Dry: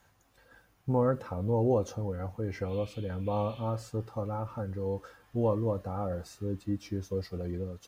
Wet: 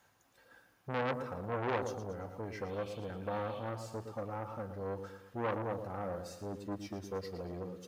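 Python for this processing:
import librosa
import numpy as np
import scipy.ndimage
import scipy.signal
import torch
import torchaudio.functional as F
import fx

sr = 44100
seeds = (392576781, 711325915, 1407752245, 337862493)

p1 = fx.highpass(x, sr, hz=200.0, slope=6)
p2 = p1 + fx.echo_feedback(p1, sr, ms=114, feedback_pct=44, wet_db=-9.5, dry=0)
p3 = fx.transformer_sat(p2, sr, knee_hz=1500.0)
y = F.gain(torch.from_numpy(p3), -2.0).numpy()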